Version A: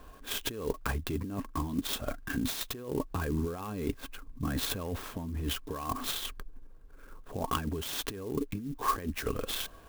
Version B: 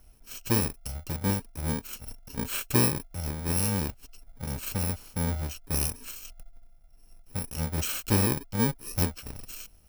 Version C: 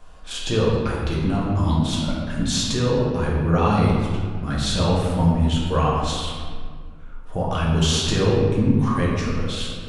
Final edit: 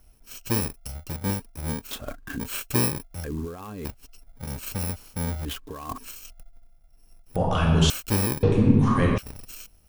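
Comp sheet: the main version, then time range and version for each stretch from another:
B
0:01.91–0:02.40: punch in from A
0:03.24–0:03.85: punch in from A
0:05.45–0:05.98: punch in from A
0:07.36–0:07.90: punch in from C
0:08.43–0:09.18: punch in from C

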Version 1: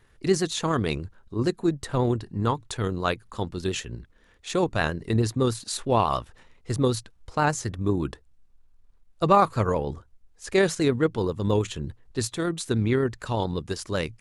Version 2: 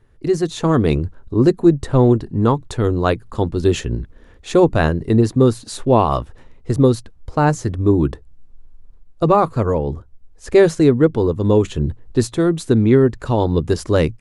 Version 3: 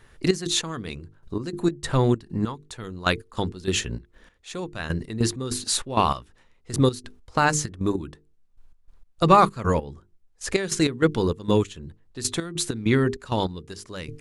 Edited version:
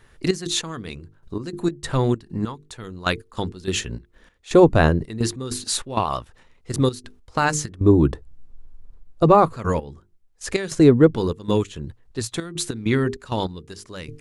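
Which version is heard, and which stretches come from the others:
3
0:04.51–0:05.05: punch in from 2
0:05.99–0:06.72: punch in from 1
0:07.81–0:09.56: punch in from 2
0:10.72–0:11.16: punch in from 2
0:11.73–0:12.34: punch in from 1

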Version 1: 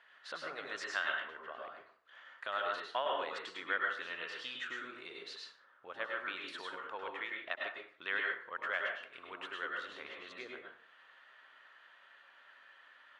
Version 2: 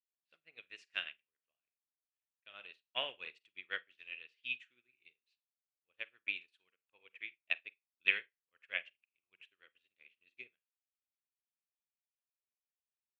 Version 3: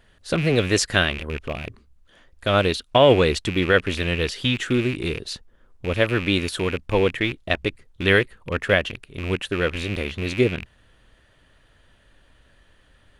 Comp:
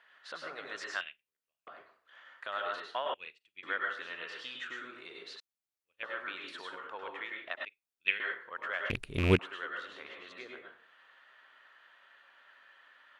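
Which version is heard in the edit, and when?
1
0:01.01–0:01.67: punch in from 2
0:03.14–0:03.63: punch in from 2
0:05.40–0:06.03: punch in from 2
0:07.65–0:08.20: punch in from 2
0:08.90–0:09.39: punch in from 3

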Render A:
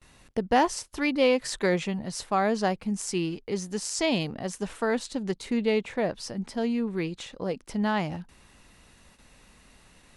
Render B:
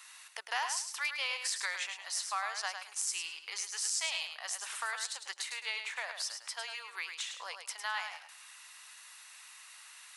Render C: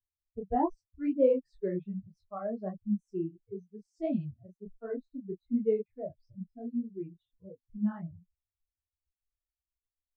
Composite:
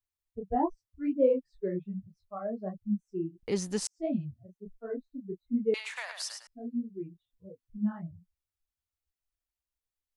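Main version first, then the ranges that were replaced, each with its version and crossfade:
C
0:03.43–0:03.87: punch in from A
0:05.74–0:06.47: punch in from B

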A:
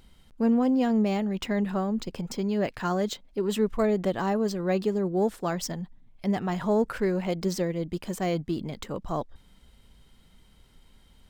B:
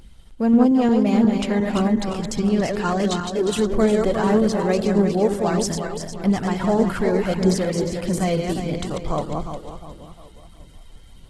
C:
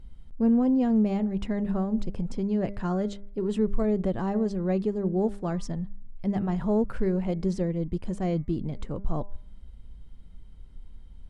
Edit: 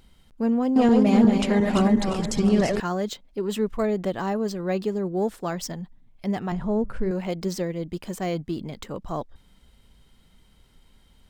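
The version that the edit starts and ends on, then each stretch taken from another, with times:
A
0:00.76–0:02.80: punch in from B
0:06.52–0:07.11: punch in from C

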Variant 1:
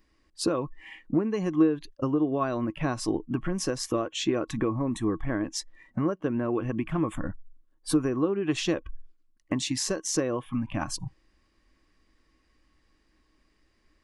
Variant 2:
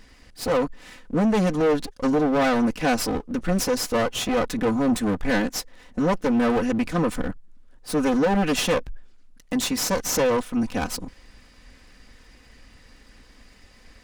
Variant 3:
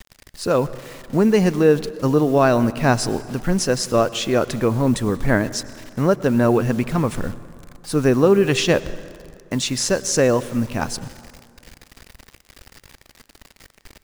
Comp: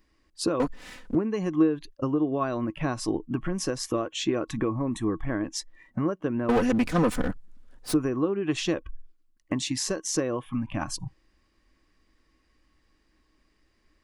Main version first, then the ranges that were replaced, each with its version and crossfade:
1
0:00.60–0:01.15: punch in from 2
0:06.49–0:07.94: punch in from 2
not used: 3

